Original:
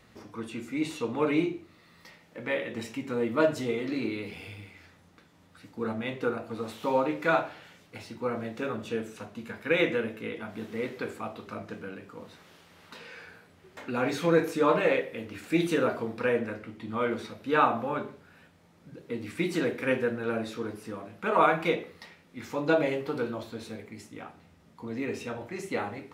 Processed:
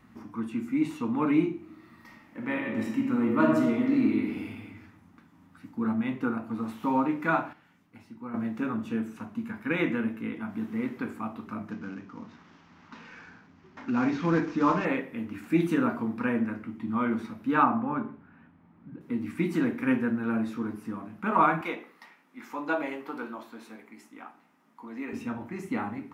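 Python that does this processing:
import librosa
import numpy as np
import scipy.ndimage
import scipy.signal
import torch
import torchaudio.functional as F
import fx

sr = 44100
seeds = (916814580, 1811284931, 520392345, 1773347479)

y = fx.reverb_throw(x, sr, start_s=1.56, length_s=3.07, rt60_s=1.1, drr_db=1.0)
y = fx.cvsd(y, sr, bps=32000, at=(11.71, 14.85))
y = fx.gaussian_blur(y, sr, sigma=2.7, at=(17.63, 19.01))
y = fx.highpass(y, sr, hz=450.0, slope=12, at=(21.61, 25.13))
y = fx.edit(y, sr, fx.clip_gain(start_s=7.53, length_s=0.81, db=-9.0), tone=tone)
y = fx.graphic_eq(y, sr, hz=(250, 500, 1000, 4000, 8000), db=(12, -11, 6, -8, -5))
y = F.gain(torch.from_numpy(y), -1.5).numpy()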